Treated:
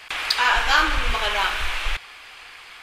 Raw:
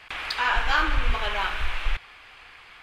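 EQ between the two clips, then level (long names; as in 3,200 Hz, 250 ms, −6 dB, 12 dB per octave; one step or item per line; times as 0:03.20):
bass and treble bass −6 dB, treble +9 dB
+4.5 dB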